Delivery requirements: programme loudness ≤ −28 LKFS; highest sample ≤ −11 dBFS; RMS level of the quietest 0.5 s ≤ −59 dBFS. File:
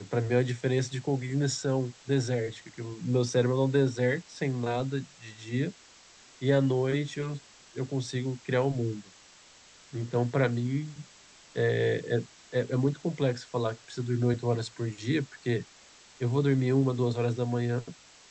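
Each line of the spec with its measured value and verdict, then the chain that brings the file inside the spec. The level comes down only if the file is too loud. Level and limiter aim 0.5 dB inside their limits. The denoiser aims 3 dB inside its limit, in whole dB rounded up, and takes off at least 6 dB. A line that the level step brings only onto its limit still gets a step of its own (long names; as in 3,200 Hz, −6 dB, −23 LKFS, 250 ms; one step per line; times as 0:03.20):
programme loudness −29.5 LKFS: in spec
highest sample −12.5 dBFS: in spec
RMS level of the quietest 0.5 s −55 dBFS: out of spec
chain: broadband denoise 7 dB, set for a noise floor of −55 dBFS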